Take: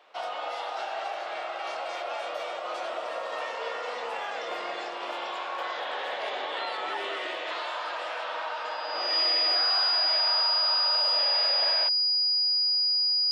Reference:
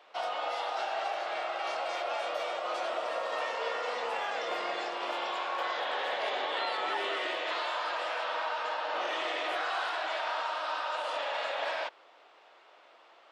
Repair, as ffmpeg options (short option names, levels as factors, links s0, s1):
-af "bandreject=f=4900:w=30"